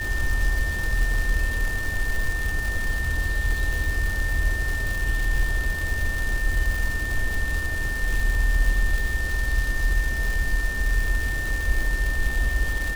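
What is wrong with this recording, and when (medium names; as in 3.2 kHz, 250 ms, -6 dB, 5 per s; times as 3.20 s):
crackle 340 per s -26 dBFS
whine 1.8 kHz -28 dBFS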